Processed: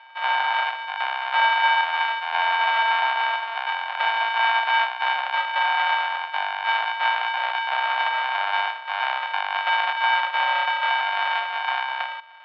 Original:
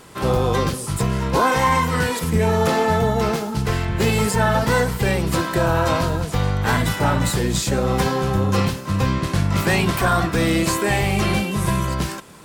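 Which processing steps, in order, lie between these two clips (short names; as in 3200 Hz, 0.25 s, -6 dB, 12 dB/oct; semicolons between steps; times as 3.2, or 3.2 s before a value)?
sample sorter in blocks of 64 samples; mistuned SSB +220 Hz 550–3200 Hz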